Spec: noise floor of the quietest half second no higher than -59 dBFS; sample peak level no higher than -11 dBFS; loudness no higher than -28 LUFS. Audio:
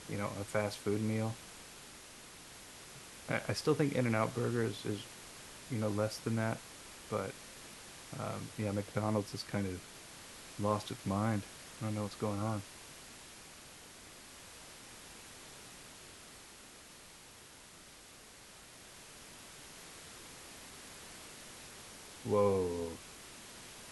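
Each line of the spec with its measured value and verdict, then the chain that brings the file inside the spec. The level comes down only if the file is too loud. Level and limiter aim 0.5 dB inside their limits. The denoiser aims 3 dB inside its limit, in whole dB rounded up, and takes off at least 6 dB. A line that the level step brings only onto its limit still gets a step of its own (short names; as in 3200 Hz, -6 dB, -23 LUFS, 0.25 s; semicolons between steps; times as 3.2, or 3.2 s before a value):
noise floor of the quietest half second -56 dBFS: fail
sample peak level -18.0 dBFS: OK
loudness -38.0 LUFS: OK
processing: denoiser 6 dB, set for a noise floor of -56 dBFS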